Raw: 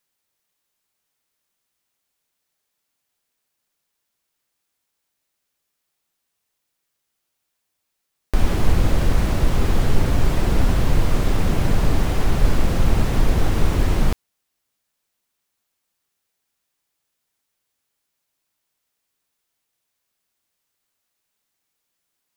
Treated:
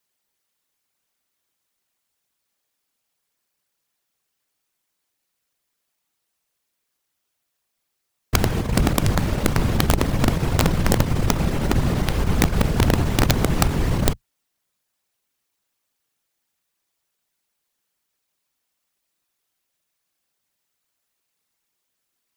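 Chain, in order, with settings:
one-sided soft clipper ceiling −9.5 dBFS
random phases in short frames
wrap-around overflow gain 8.5 dB

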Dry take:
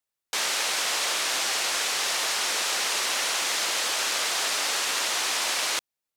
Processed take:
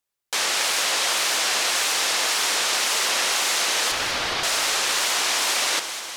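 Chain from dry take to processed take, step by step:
0:03.91–0:04.43: variable-slope delta modulation 32 kbit/s
delay that swaps between a low-pass and a high-pass 104 ms, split 1,200 Hz, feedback 84%, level −9 dB
tape wow and flutter 92 cents
level +3.5 dB

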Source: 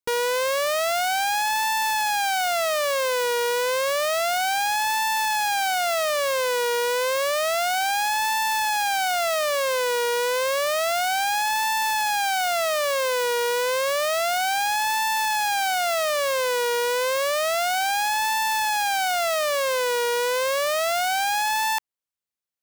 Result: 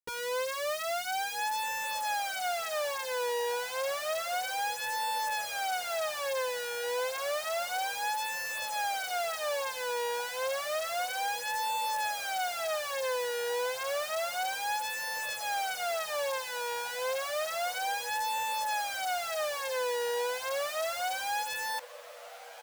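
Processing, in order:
feedback delay with all-pass diffusion 1,437 ms, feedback 42%, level −15.5 dB
barber-pole flanger 9.2 ms −0.47 Hz
level −7 dB

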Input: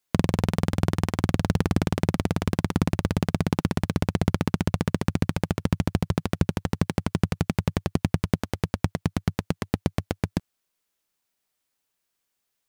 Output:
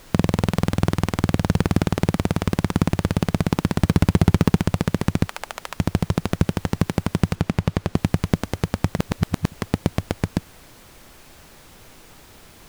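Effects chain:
0:03.79–0:04.57: leveller curve on the samples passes 2
0:05.26–0:05.77: high-pass filter 700 Hz 24 dB per octave
background noise pink −50 dBFS
0:07.35–0:07.96: high-shelf EQ 6,700 Hz −8.5 dB
0:08.99–0:09.52: reverse
level +3.5 dB

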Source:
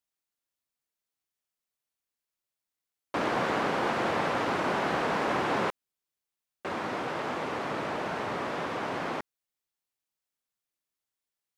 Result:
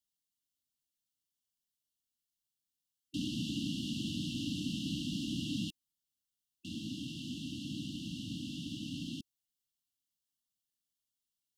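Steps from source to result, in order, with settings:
linear-phase brick-wall band-stop 320–2,700 Hz

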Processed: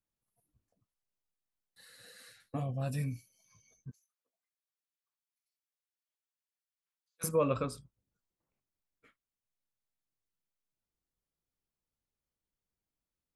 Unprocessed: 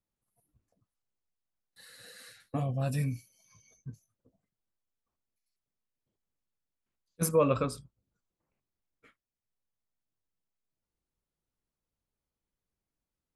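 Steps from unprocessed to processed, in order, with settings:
0:03.91–0:07.24: high-pass filter 1,200 Hz 12 dB per octave
level −4 dB

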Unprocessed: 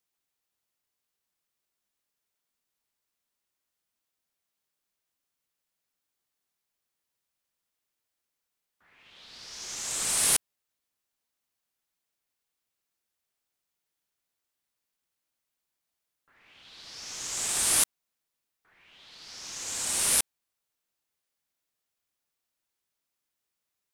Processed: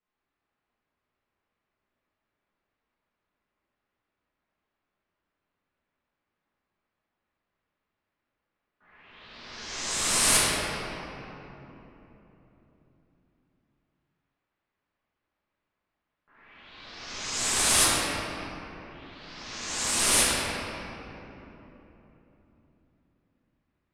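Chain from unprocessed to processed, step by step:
low-pass that shuts in the quiet parts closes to 2,200 Hz, open at −28.5 dBFS
high-shelf EQ 9,800 Hz −9.5 dB
rectangular room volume 210 cubic metres, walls hard, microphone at 1.4 metres

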